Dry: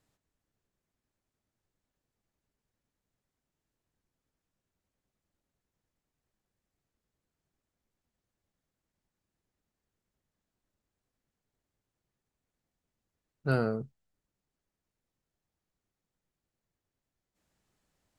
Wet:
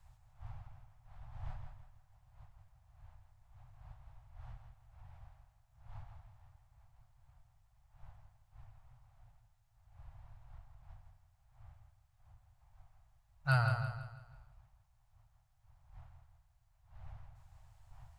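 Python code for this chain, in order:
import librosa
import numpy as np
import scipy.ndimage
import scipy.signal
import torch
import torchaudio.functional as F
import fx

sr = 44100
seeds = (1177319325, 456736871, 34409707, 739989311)

p1 = fx.dmg_wind(x, sr, seeds[0], corner_hz=310.0, level_db=-58.0)
p2 = scipy.signal.sosfilt(scipy.signal.ellip(3, 1.0, 50, [120.0, 760.0], 'bandstop', fs=sr, output='sos'), p1)
p3 = fx.low_shelf(p2, sr, hz=78.0, db=6.5)
p4 = p3 + fx.echo_feedback(p3, sr, ms=165, feedback_pct=39, wet_db=-7, dry=0)
y = p4 * 10.0 ** (2.5 / 20.0)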